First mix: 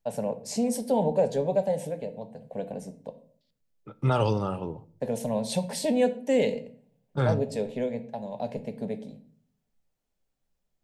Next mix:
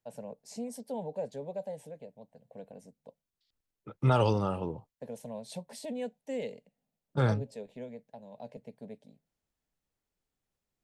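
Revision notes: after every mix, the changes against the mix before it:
first voice -10.0 dB; reverb: off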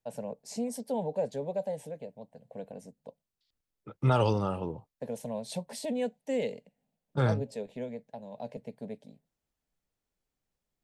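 first voice +5.0 dB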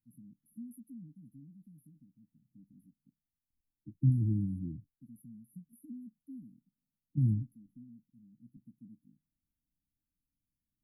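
first voice -10.5 dB; master: add brick-wall FIR band-stop 330–9700 Hz

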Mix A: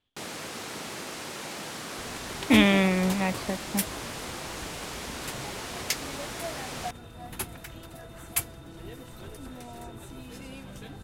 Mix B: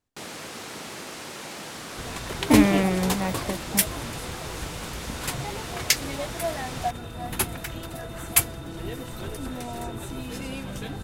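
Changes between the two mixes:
speech: remove synth low-pass 3300 Hz, resonance Q 9.2; second sound +8.5 dB

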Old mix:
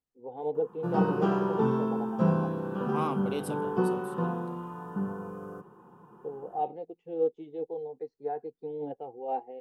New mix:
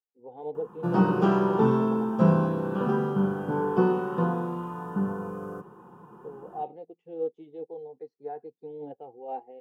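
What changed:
first voice -3.5 dB; second voice: muted; background +4.5 dB

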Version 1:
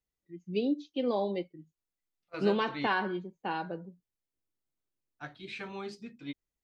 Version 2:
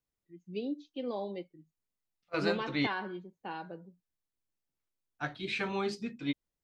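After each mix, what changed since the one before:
first voice -6.5 dB; second voice +7.0 dB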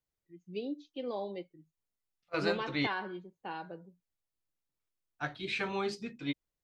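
master: add bell 230 Hz -4 dB 0.69 oct

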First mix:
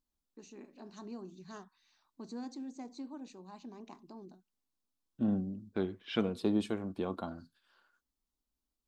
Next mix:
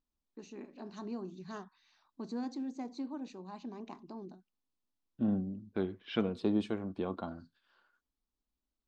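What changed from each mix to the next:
first voice +4.5 dB; master: add air absorption 95 m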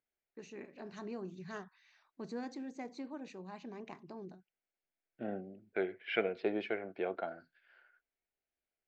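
second voice: add speaker cabinet 370–4600 Hz, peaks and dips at 380 Hz +4 dB, 690 Hz +7 dB, 1100 Hz -9 dB, 1500 Hz +5 dB, 2200 Hz +7 dB, 3700 Hz -5 dB; master: add graphic EQ 125/250/500/1000/2000/4000 Hz +9/-8/+4/-5/+9/-4 dB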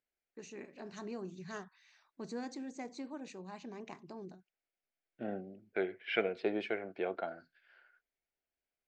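master: remove air absorption 95 m

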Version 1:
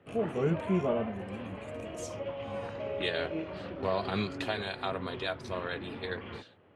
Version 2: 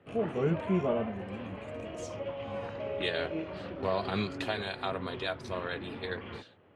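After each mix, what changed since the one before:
first voice: add air absorption 52 m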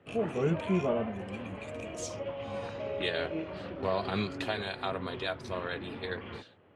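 first voice +8.5 dB

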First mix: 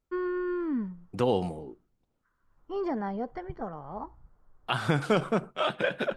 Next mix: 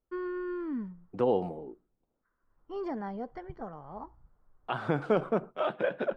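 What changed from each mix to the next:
first voice -4.5 dB; second voice: add band-pass 490 Hz, Q 0.59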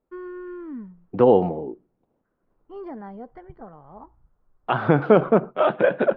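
second voice +12.0 dB; master: add air absorption 280 m

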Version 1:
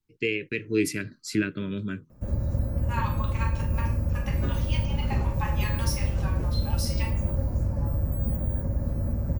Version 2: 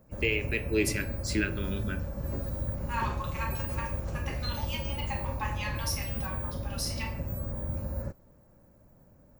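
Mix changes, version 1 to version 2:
first voice: send on; background: entry -2.10 s; master: add low shelf 350 Hz -9 dB

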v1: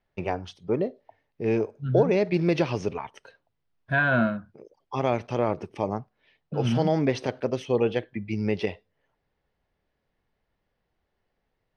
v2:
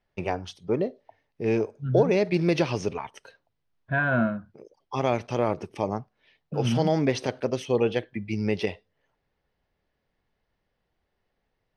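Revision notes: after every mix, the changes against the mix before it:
first voice: remove LPF 3800 Hz 6 dB/oct; second voice: add air absorption 360 m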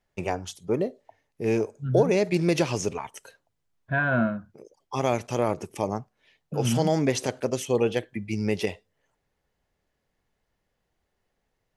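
master: remove polynomial smoothing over 15 samples

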